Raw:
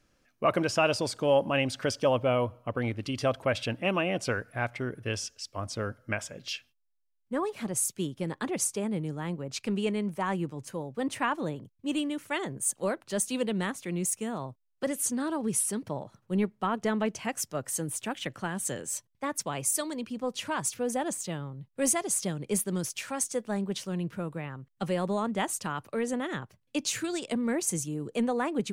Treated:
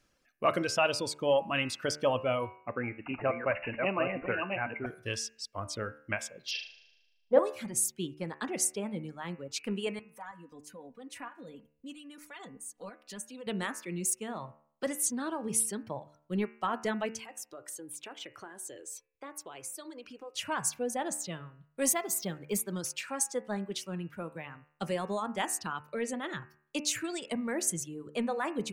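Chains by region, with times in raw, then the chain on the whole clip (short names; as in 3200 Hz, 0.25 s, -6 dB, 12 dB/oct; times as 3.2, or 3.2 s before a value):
2.56–4.86 reverse delay 0.548 s, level -3 dB + BPF 120–6500 Hz + careless resampling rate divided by 8×, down none, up filtered
6.51–7.39 steep low-pass 5900 Hz 48 dB/oct + band shelf 590 Hz +14.5 dB 1.2 oct + flutter echo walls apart 6.5 m, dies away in 1.1 s
9.99–13.47 comb 4.1 ms, depth 71% + compressor 3:1, threshold -40 dBFS + tremolo saw up 3.1 Hz, depth 50%
17.23–20.35 resonant low shelf 260 Hz -6.5 dB, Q 3 + compressor 5:1, threshold -39 dBFS + notch 1800 Hz, Q 30
21.9–22.75 block floating point 7-bit + decimation joined by straight lines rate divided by 2×
whole clip: reverb removal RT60 1.4 s; low shelf 480 Hz -4.5 dB; de-hum 74.56 Hz, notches 39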